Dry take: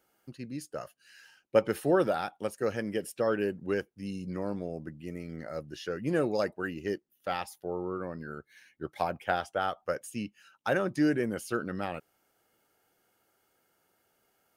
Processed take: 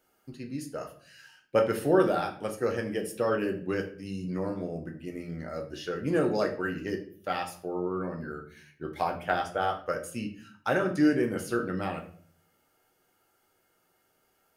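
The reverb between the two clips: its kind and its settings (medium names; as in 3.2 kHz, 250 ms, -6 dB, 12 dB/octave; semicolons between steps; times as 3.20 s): simulated room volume 52 m³, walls mixed, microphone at 0.48 m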